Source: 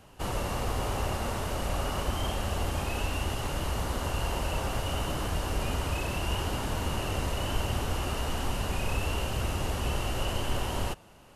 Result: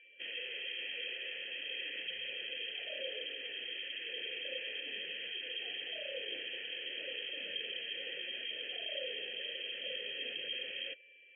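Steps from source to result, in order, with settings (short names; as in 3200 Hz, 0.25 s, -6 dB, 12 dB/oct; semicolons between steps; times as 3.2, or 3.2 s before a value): whine 850 Hz -47 dBFS; inverted band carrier 3200 Hz; spectral gate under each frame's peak -30 dB strong; vowel filter e; gain +1 dB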